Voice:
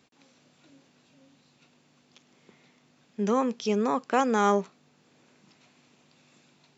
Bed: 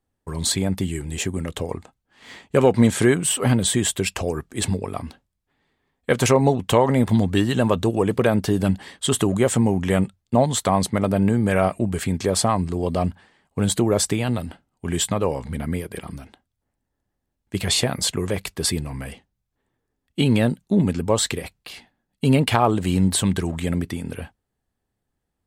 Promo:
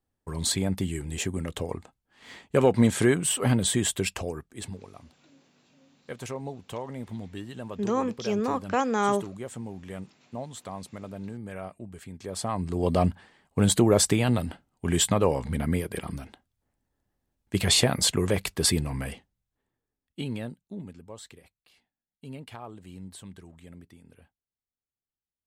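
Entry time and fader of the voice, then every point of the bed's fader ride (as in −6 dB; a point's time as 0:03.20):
4.60 s, −1.5 dB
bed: 0:04.06 −4.5 dB
0:04.94 −19 dB
0:12.13 −19 dB
0:12.89 −0.5 dB
0:19.07 −0.5 dB
0:21.08 −24 dB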